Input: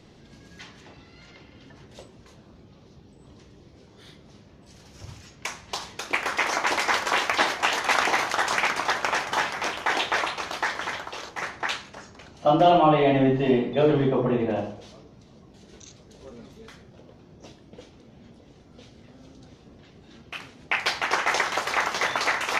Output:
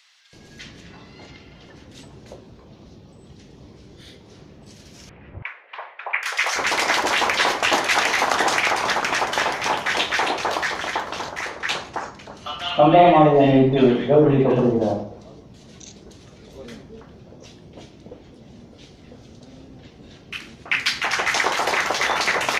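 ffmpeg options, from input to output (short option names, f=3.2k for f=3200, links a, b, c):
-filter_complex "[0:a]asettb=1/sr,asplit=3[a][b][c];[a]atrim=end=5.094[d];[b]atrim=start=5.09:end=6.23,asetpts=PTS-STARTPTS,afade=t=in:d=0.004:c=qsin,afade=t=out:st=1.136:d=0.004:c=qsin,asuperpass=centerf=1100:order=8:qfactor=0.59[e];[c]atrim=start=6.226[f];[d][e]acrossfade=d=0.004:c1=hsin:c2=qsin[g];[g][f]acrossfade=d=0.004:c1=qsin:c2=hsin,acrossover=split=1300[h][i];[h]adelay=330[j];[j][i]amix=inputs=2:normalize=0,volume=5.5dB"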